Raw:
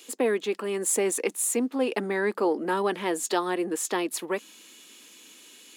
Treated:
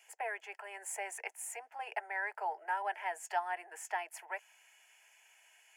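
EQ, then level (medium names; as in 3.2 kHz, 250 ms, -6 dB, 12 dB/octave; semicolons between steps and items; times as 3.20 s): steep high-pass 570 Hz 48 dB/octave; low-pass 2 kHz 6 dB/octave; static phaser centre 780 Hz, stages 8; -2.0 dB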